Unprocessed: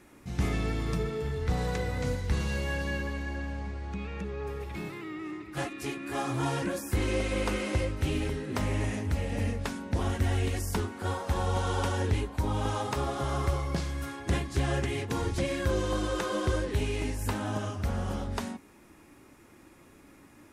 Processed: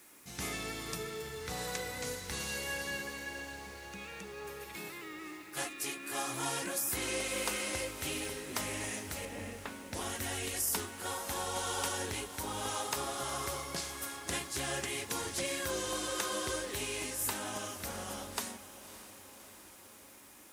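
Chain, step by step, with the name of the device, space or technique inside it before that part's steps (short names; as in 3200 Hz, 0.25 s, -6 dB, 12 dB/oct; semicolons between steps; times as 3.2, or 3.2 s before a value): 9.25–9.93 air absorption 420 m; turntable without a phono preamp (RIAA curve recording; white noise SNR 29 dB); diffused feedback echo 0.587 s, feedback 64%, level -14 dB; gain -4.5 dB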